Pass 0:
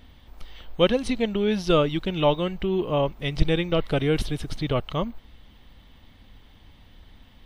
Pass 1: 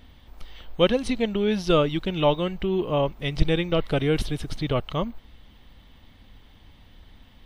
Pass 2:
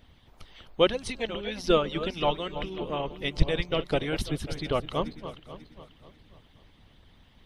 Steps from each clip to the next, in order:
nothing audible
regenerating reverse delay 0.27 s, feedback 56%, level -11.5 dB; de-hum 62.01 Hz, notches 3; harmonic-percussive split harmonic -15 dB

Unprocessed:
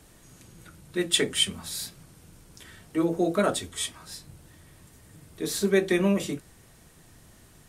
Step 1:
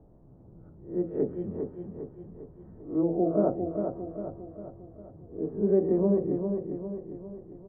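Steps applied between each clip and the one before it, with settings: spectral swells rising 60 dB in 0.36 s; inverse Chebyshev low-pass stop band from 3400 Hz, stop band 70 dB; feedback echo 0.402 s, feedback 50%, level -6 dB; gain -1.5 dB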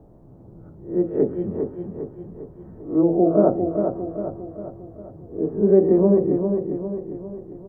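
low shelf 140 Hz -3.5 dB; on a send at -22 dB: reverb RT60 0.75 s, pre-delay 4 ms; on the sum: gain +8.5 dB

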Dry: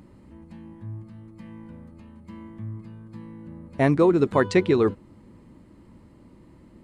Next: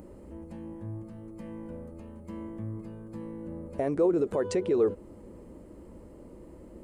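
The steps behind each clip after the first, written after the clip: compressor, threshold -23 dBFS, peak gain reduction 9.5 dB; limiter -24 dBFS, peak gain reduction 10 dB; graphic EQ 125/250/500/1000/2000/4000 Hz -11/-5/+7/-6/-7/-11 dB; gain +6.5 dB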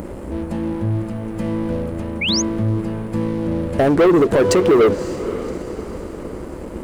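sample leveller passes 3; diffused feedback echo 0.558 s, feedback 50%, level -13 dB; painted sound rise, 2.21–2.42, 2100–6900 Hz -27 dBFS; gain +7 dB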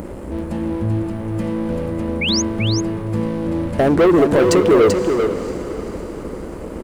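echo 0.387 s -6 dB

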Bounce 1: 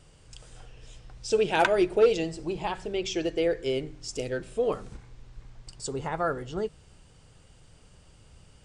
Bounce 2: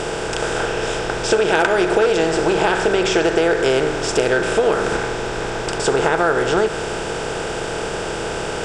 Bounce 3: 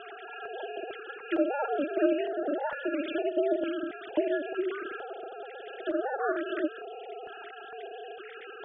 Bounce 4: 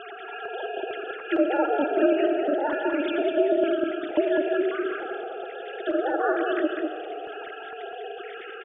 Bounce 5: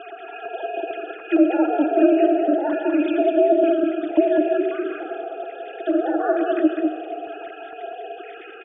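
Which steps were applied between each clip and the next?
per-bin compression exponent 0.4; dynamic EQ 1500 Hz, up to +6 dB, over -41 dBFS, Q 2.1; compressor 6:1, threshold -20 dBFS, peak gain reduction 8.5 dB; gain +7.5 dB
sine-wave speech; ring modulator 140 Hz; stepped notch 2.2 Hz 540–2400 Hz; gain -8.5 dB
echo 0.201 s -5 dB; on a send at -10.5 dB: reverb RT60 2.6 s, pre-delay 40 ms; on the sum: gain +4.5 dB
small resonant body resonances 310/670/2500 Hz, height 14 dB, ringing for 65 ms; gain -3 dB

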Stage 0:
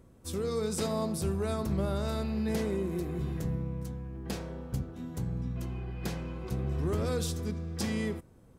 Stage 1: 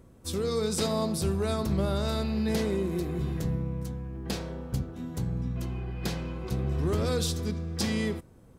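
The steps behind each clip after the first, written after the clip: dynamic EQ 4100 Hz, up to +5 dB, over -58 dBFS, Q 1.4; gain +3 dB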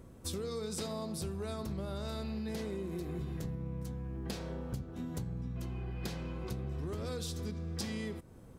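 compressor 6:1, threshold -37 dBFS, peak gain reduction 13.5 dB; gain +1 dB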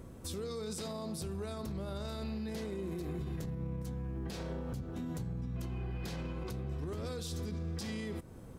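limiter -35.5 dBFS, peak gain reduction 11 dB; gain +4 dB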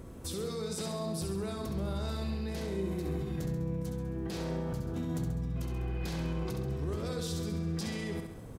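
feedback echo 67 ms, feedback 55%, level -6 dB; gain +2.5 dB

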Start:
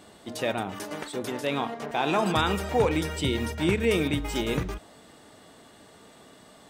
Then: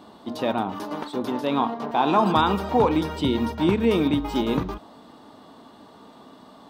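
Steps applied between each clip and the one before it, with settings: graphic EQ 250/1000/2000/4000/8000 Hz +10/+12/-6/+6/-10 dB; gain -2 dB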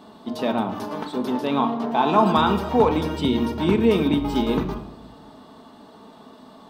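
shoebox room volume 3000 m³, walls furnished, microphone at 1.5 m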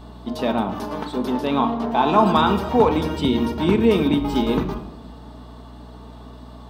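hum 60 Hz, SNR 20 dB; gain +1.5 dB

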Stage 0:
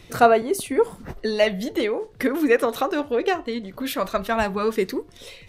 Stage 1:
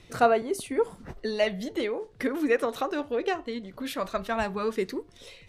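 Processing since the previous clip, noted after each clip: LPF 11000 Hz 12 dB/oct; gain -6 dB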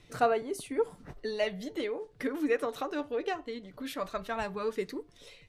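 comb 6.8 ms, depth 32%; gain -5.5 dB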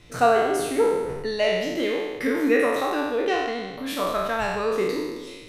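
spectral trails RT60 1.31 s; gain +5.5 dB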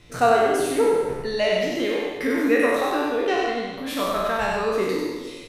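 echo 95 ms -3.5 dB

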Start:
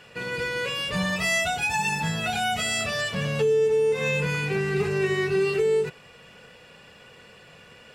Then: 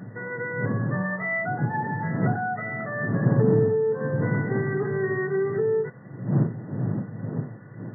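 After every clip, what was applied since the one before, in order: wind noise 130 Hz -22 dBFS; FFT band-pass 100–2000 Hz; gain -1.5 dB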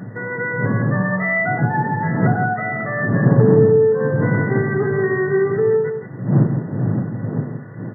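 echo 0.166 s -8.5 dB; gain +7 dB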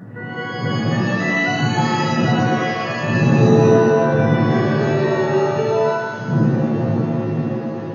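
shimmer reverb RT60 1.3 s, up +7 st, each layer -2 dB, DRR 0.5 dB; gain -5 dB

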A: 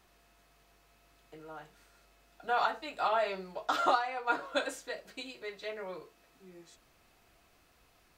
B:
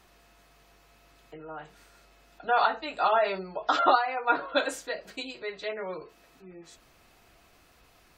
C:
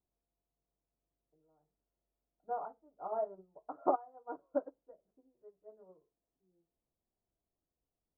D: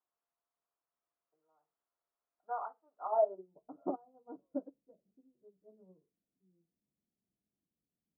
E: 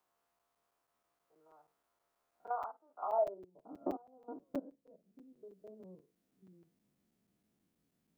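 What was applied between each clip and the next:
spectral gate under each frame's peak -30 dB strong; gain +6 dB
crackle 300/s -43 dBFS; Gaussian blur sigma 11 samples; upward expander 2.5:1, over -43 dBFS
band-pass sweep 1200 Hz -> 200 Hz, 3.04–3.6; gain +8 dB
stepped spectrum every 50 ms; crackling interface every 0.16 s, samples 256, zero, from 0.39; three-band squash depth 40%; gain +2 dB

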